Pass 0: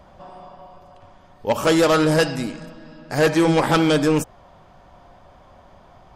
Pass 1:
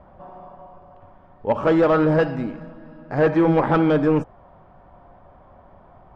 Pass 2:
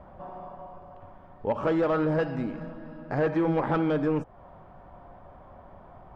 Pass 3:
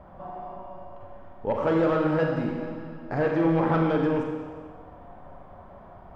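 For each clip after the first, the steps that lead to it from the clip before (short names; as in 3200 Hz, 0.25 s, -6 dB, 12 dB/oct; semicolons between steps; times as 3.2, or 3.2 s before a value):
LPF 1500 Hz 12 dB/oct
compressor 2:1, threshold -29 dBFS, peak gain reduction 8.5 dB
Schroeder reverb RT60 1.5 s, combs from 33 ms, DRR 1 dB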